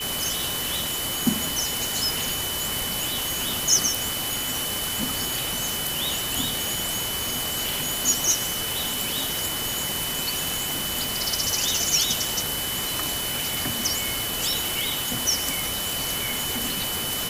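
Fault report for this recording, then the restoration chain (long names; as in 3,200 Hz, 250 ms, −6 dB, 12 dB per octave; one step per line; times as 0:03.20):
whistle 3,000 Hz −31 dBFS
0:07.19: click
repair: click removal
notch filter 3,000 Hz, Q 30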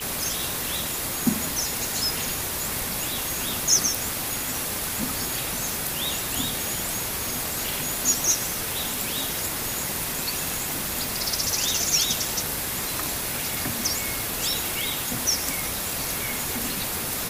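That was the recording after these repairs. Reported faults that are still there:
none of them is left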